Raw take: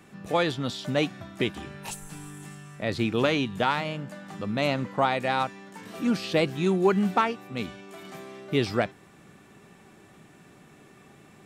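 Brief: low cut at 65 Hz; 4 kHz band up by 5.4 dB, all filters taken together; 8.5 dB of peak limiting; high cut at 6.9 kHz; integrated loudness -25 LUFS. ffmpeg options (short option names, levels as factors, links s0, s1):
-af "highpass=65,lowpass=6900,equalizer=f=4000:t=o:g=7,volume=1.68,alimiter=limit=0.266:level=0:latency=1"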